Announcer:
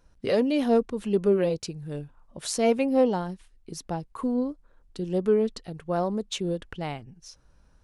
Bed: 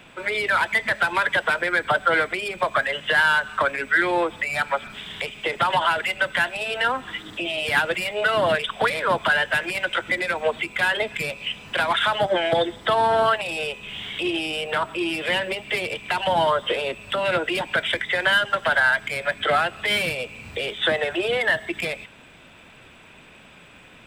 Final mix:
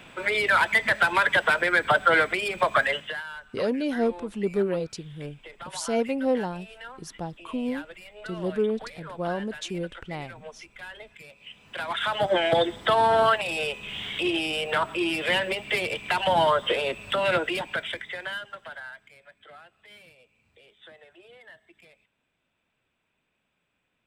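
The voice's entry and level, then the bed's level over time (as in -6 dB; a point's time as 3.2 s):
3.30 s, -3.0 dB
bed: 2.93 s 0 dB
3.24 s -20 dB
11.28 s -20 dB
12.34 s -1 dB
17.33 s -1 dB
19.32 s -28.5 dB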